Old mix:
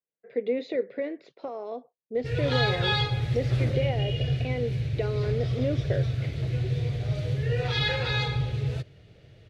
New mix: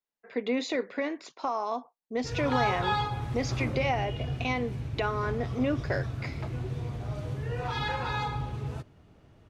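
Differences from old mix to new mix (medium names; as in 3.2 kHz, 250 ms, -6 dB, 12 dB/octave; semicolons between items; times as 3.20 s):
speech: remove band-pass filter 260 Hz, Q 0.64; master: add graphic EQ 125/250/500/1000/2000/4000 Hz -9/+7/-10/+12/-8/-10 dB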